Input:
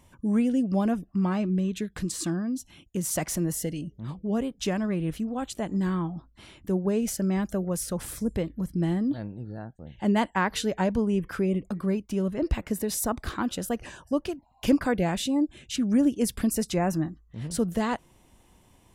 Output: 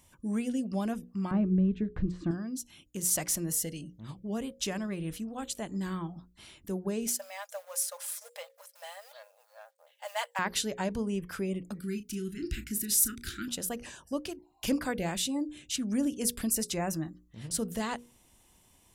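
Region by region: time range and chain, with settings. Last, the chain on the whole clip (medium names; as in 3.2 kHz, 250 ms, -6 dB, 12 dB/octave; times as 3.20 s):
1.31–2.31 s: low-pass 2.1 kHz + tilt EQ -3.5 dB/octave
7.07–10.39 s: companding laws mixed up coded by A + brick-wall FIR high-pass 480 Hz + comb 4.9 ms, depth 47%
11.79–13.48 s: Chebyshev band-stop 380–1400 Hz, order 4 + treble shelf 7.4 kHz +5 dB + doubling 34 ms -11 dB
whole clip: treble shelf 3 kHz +11 dB; hum notches 60/120/180/240/300/360/420/480/540 Hz; trim -7 dB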